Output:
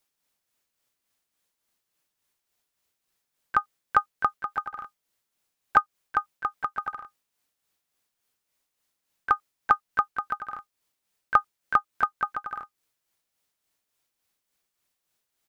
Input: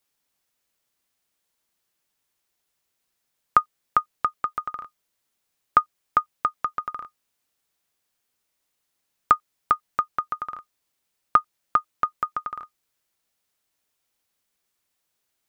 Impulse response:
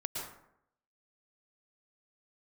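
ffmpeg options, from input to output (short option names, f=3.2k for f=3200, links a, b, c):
-filter_complex "[0:a]asplit=3[a][b][c];[b]asetrate=29433,aresample=44100,atempo=1.49831,volume=-12dB[d];[c]asetrate=55563,aresample=44100,atempo=0.793701,volume=-11dB[e];[a][d][e]amix=inputs=3:normalize=0,tremolo=f=3.5:d=0.49"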